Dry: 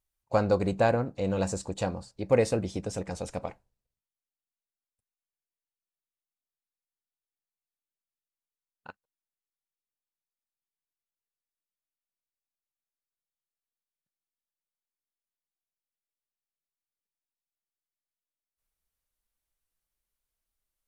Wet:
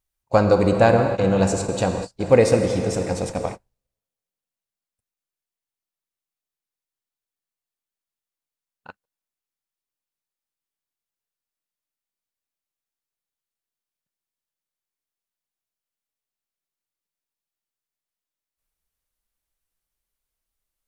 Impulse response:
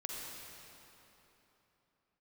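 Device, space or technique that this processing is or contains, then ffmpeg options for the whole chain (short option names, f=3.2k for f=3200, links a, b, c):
keyed gated reverb: -filter_complex "[0:a]asplit=3[a][b][c];[1:a]atrim=start_sample=2205[d];[b][d]afir=irnorm=-1:irlink=0[e];[c]apad=whole_len=920712[f];[e][f]sidechaingate=range=-58dB:threshold=-40dB:ratio=16:detection=peak,volume=1.5dB[g];[a][g]amix=inputs=2:normalize=0,volume=3dB"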